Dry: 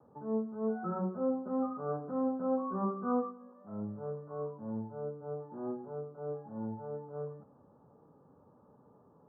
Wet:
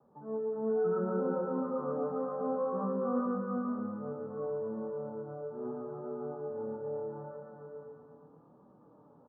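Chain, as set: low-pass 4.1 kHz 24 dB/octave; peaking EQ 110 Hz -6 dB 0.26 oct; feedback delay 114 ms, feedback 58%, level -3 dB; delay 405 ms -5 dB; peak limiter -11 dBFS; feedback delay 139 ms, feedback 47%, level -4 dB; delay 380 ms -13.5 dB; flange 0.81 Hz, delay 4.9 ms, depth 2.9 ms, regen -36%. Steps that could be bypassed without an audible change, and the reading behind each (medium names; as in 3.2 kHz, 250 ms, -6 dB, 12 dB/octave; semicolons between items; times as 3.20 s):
low-pass 4.1 kHz: input has nothing above 1.4 kHz; peak limiter -11 dBFS: peak at its input -17.5 dBFS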